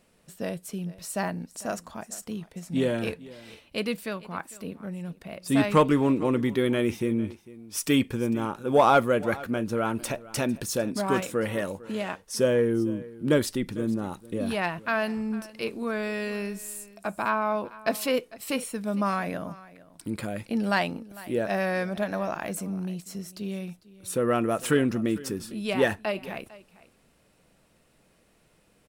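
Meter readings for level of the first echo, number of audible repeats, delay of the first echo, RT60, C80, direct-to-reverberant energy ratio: -19.5 dB, 1, 0.451 s, none, none, none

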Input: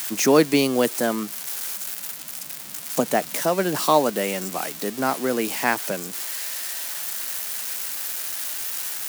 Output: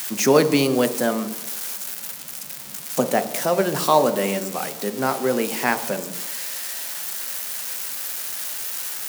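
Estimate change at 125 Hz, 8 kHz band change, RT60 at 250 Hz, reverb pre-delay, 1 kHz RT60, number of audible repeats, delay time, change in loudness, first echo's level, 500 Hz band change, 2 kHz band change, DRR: +3.0 dB, 0.0 dB, 1.0 s, 3 ms, 1.2 s, none, none, +1.0 dB, none, +2.0 dB, 0.0 dB, 8.5 dB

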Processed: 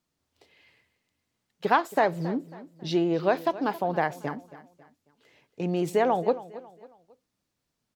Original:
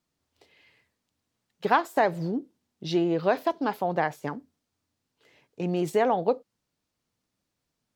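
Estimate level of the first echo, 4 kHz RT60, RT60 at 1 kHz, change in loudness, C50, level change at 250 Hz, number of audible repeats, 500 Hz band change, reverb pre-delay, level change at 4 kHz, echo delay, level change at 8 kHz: -17.0 dB, none, none, 0.0 dB, none, 0.0 dB, 3, 0.0 dB, none, 0.0 dB, 0.273 s, 0.0 dB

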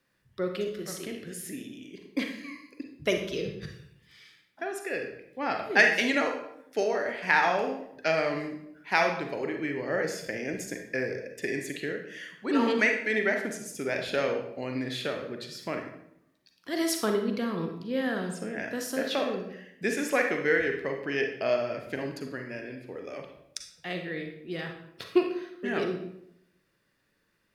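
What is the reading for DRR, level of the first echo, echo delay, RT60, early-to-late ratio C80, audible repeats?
3.5 dB, none, none, 0.75 s, 9.5 dB, none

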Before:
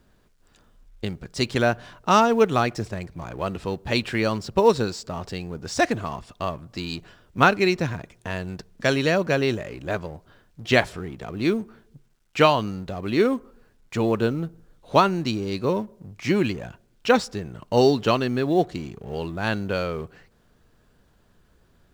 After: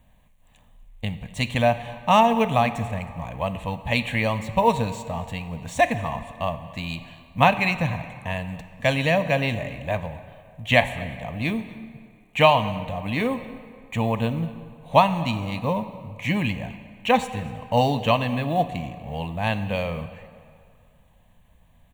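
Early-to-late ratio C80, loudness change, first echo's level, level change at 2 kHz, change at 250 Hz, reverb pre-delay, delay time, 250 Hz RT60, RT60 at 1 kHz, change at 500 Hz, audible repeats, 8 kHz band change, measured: 12.5 dB, 0.0 dB, -22.5 dB, +1.0 dB, -2.0 dB, 10 ms, 0.241 s, 2.1 s, 2.3 s, -2.0 dB, 1, -4.0 dB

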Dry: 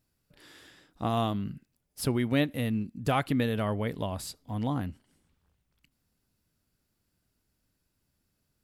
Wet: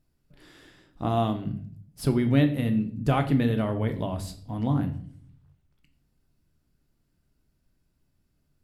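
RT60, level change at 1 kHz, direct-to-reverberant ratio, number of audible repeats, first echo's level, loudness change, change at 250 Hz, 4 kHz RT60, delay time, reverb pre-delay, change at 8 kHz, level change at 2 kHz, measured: 0.55 s, +1.5 dB, 6.0 dB, none, none, +4.5 dB, +5.0 dB, 0.45 s, none, 3 ms, -4.0 dB, -0.5 dB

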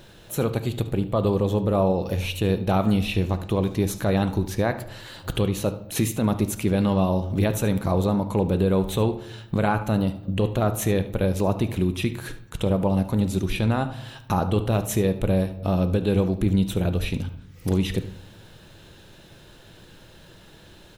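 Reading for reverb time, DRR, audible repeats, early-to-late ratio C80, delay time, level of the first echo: 0.80 s, 9.0 dB, 1, 16.0 dB, 73 ms, -16.0 dB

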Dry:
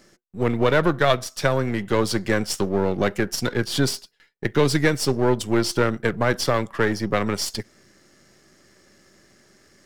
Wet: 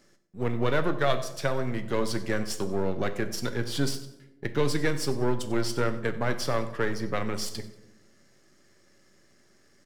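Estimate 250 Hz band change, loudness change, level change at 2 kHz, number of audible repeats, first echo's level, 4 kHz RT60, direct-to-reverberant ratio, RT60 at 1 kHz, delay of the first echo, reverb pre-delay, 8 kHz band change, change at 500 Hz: -7.5 dB, -7.0 dB, -7.5 dB, 2, -18.5 dB, 0.55 s, 8.0 dB, 0.85 s, 94 ms, 7 ms, -7.5 dB, -7.0 dB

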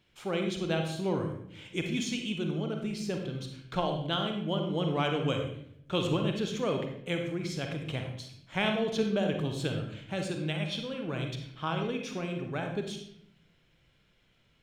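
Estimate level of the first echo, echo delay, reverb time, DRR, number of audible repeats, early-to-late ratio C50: none, none, 0.70 s, 3.0 dB, none, 5.0 dB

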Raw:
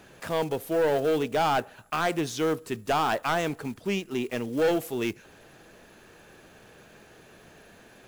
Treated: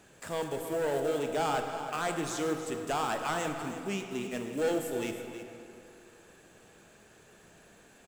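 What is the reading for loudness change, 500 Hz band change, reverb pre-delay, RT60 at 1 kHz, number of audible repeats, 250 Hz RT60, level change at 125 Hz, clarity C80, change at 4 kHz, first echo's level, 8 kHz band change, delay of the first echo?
-5.5 dB, -5.5 dB, 24 ms, 2.7 s, 1, 2.6 s, -6.0 dB, 5.5 dB, -5.5 dB, -11.0 dB, +0.5 dB, 0.318 s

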